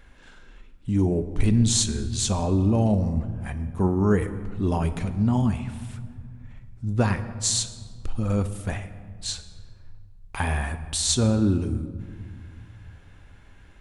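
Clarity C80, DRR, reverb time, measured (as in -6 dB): 13.5 dB, 10.0 dB, 1.9 s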